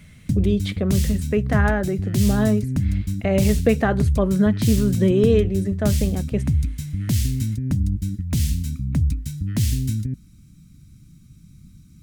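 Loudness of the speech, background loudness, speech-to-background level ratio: -22.0 LUFS, -24.0 LUFS, 2.0 dB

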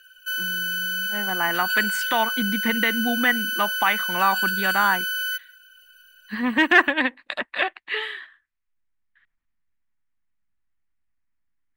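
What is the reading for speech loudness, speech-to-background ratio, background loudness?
-23.0 LUFS, 1.5 dB, -24.5 LUFS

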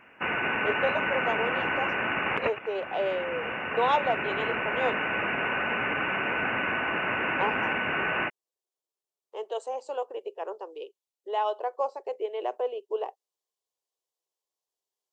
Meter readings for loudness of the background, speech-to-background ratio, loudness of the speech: -28.0 LUFS, -4.0 dB, -32.0 LUFS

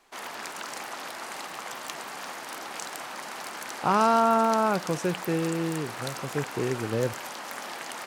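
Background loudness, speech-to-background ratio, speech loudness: -36.5 LUFS, 10.0 dB, -26.5 LUFS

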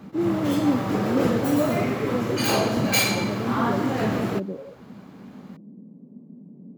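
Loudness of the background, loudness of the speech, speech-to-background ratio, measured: -24.5 LUFS, -28.0 LUFS, -3.5 dB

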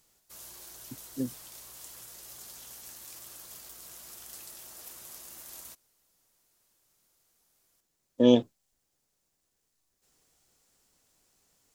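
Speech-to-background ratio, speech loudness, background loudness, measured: 19.0 dB, -26.0 LUFS, -45.0 LUFS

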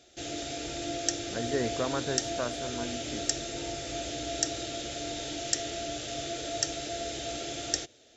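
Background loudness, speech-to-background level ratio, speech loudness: -33.5 LUFS, -2.0 dB, -35.5 LUFS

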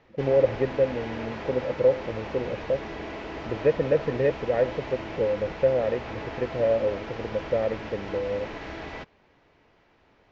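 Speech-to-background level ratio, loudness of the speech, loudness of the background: 10.0 dB, -27.0 LUFS, -37.0 LUFS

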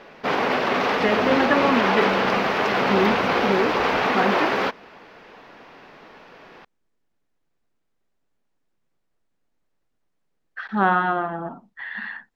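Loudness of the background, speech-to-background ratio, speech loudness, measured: -21.0 LUFS, -3.5 dB, -24.5 LUFS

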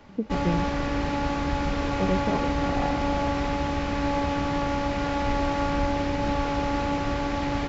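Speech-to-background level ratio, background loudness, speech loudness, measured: -5.0 dB, -27.0 LUFS, -32.0 LUFS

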